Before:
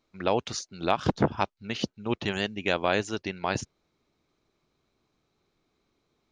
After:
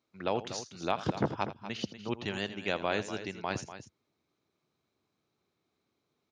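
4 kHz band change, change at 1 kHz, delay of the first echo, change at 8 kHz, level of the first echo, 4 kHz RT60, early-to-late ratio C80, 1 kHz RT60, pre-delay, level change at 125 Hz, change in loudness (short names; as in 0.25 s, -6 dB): -5.5 dB, -5.5 dB, 82 ms, -5.5 dB, -15.0 dB, none, none, none, none, -6.0 dB, -5.5 dB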